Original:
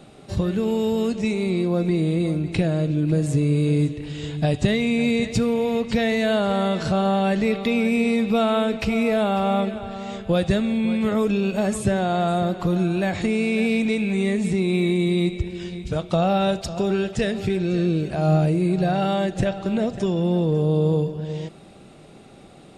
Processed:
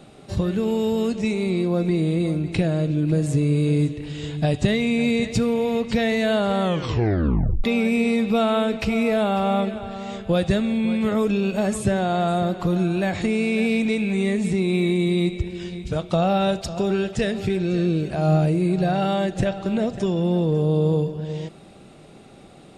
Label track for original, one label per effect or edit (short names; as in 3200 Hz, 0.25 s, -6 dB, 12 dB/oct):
6.620000	6.620000	tape stop 1.02 s